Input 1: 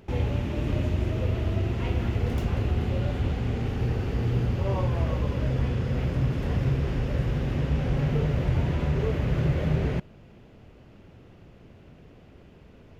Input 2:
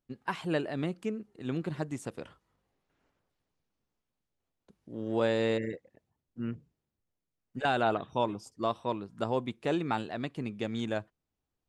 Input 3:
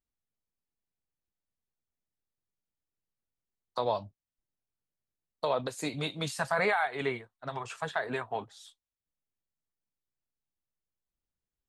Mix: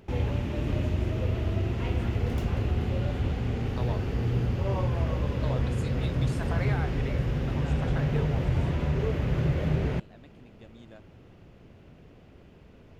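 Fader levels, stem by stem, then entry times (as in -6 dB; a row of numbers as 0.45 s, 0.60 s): -1.5 dB, -18.5 dB, -9.0 dB; 0.00 s, 0.00 s, 0.00 s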